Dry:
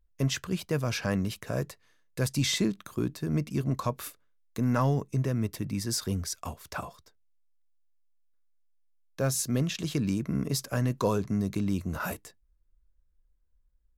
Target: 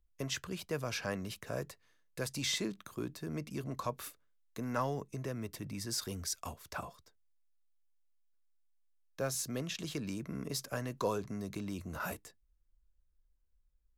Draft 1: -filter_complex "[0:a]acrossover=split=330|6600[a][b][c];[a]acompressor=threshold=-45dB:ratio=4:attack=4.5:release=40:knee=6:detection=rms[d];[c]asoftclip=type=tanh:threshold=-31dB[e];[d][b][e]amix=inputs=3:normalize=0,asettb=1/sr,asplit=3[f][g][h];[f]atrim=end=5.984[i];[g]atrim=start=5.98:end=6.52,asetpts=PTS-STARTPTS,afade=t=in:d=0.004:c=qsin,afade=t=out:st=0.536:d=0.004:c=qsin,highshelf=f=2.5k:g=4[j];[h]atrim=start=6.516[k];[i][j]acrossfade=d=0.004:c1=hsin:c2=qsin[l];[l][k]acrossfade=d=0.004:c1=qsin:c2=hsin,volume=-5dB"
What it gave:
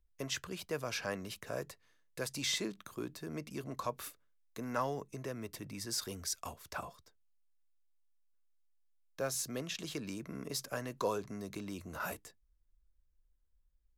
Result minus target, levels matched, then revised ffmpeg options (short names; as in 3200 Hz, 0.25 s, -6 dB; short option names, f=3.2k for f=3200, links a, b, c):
compressor: peak gain reduction +6 dB
-filter_complex "[0:a]acrossover=split=330|6600[a][b][c];[a]acompressor=threshold=-37dB:ratio=4:attack=4.5:release=40:knee=6:detection=rms[d];[c]asoftclip=type=tanh:threshold=-31dB[e];[d][b][e]amix=inputs=3:normalize=0,asettb=1/sr,asplit=3[f][g][h];[f]atrim=end=5.984[i];[g]atrim=start=5.98:end=6.52,asetpts=PTS-STARTPTS,afade=t=in:d=0.004:c=qsin,afade=t=out:st=0.536:d=0.004:c=qsin,highshelf=f=2.5k:g=4[j];[h]atrim=start=6.516[k];[i][j]acrossfade=d=0.004:c1=hsin:c2=qsin[l];[l][k]acrossfade=d=0.004:c1=qsin:c2=hsin,volume=-5dB"